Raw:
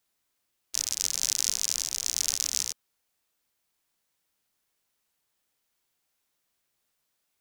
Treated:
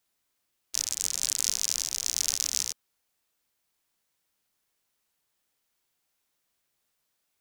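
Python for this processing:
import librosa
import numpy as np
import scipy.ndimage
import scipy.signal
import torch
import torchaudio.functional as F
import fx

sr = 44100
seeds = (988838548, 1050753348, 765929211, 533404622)

y = fx.doppler_dist(x, sr, depth_ms=0.38, at=(0.84, 1.44))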